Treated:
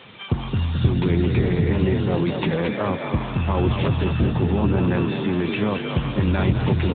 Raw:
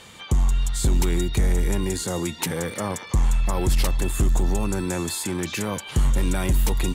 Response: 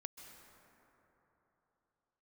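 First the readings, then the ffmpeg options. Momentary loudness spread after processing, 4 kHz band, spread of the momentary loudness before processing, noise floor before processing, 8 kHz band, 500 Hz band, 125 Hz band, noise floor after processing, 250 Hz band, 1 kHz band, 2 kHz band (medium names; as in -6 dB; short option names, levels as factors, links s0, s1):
4 LU, -0.5 dB, 4 LU, -40 dBFS, under -40 dB, +5.5 dB, +5.0 dB, -31 dBFS, +6.5 dB, +3.5 dB, +3.0 dB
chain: -filter_complex "[0:a]asplit=8[s0][s1][s2][s3][s4][s5][s6][s7];[s1]adelay=216,afreqshift=38,volume=0.531[s8];[s2]adelay=432,afreqshift=76,volume=0.275[s9];[s3]adelay=648,afreqshift=114,volume=0.143[s10];[s4]adelay=864,afreqshift=152,volume=0.075[s11];[s5]adelay=1080,afreqshift=190,volume=0.0389[s12];[s6]adelay=1296,afreqshift=228,volume=0.0202[s13];[s7]adelay=1512,afreqshift=266,volume=0.0105[s14];[s0][s8][s9][s10][s11][s12][s13][s14]amix=inputs=8:normalize=0,volume=1.68" -ar 8000 -c:a libopencore_amrnb -b:a 10200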